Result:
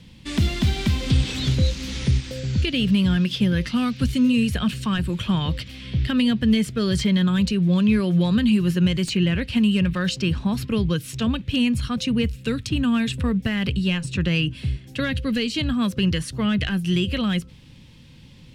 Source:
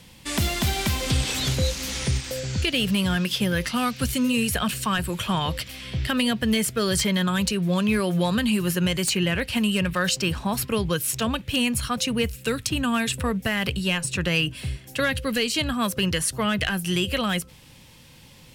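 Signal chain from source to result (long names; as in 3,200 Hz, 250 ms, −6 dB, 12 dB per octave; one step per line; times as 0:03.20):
drawn EQ curve 250 Hz 0 dB, 710 Hz −12 dB, 3,700 Hz −6 dB, 13,000 Hz −21 dB
level +5 dB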